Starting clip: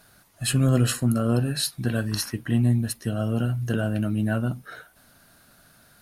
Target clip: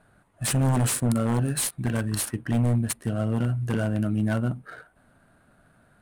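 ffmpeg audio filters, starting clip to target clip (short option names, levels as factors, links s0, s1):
-af "highshelf=f=7000:t=q:w=3:g=9,aeval=exprs='0.158*(abs(mod(val(0)/0.158+3,4)-2)-1)':c=same,adynamicsmooth=sensitivity=7.5:basefreq=2000"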